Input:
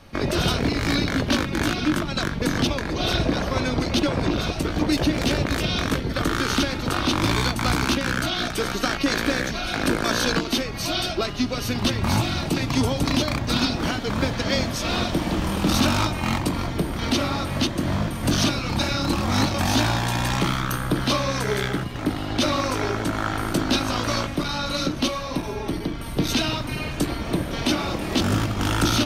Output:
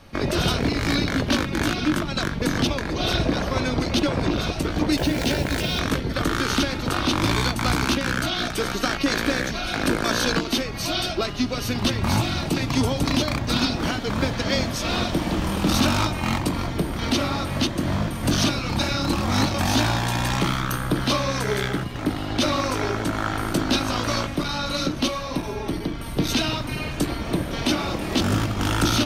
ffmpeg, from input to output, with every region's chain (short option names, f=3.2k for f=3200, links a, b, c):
-filter_complex "[0:a]asettb=1/sr,asplit=3[a][b][c];[a]atrim=end=4.984[d];[b]atrim=start=4.98:end=5.79,asetpts=PTS-STARTPTS,afade=t=in:d=0.004:c=qsin,afade=t=out:st=0.806:d=0.004:c=qsin,bandreject=f=50:t=h:w=6,bandreject=f=100:t=h:w=6,bandreject=f=150:t=h:w=6,bandreject=f=200:t=h:w=6,bandreject=f=250:t=h:w=6,bandreject=f=300:t=h:w=6,bandreject=f=350:t=h:w=6,acrusher=bits=7:dc=4:mix=0:aa=0.000001,asuperstop=centerf=1200:order=4:qfactor=6.5[e];[c]atrim=start=5.786[f];[d][e]acrossfade=d=0.004:c1=hsin:c2=qsin[g];[g][f]acrossfade=d=0.004:c1=qsin:c2=hsin"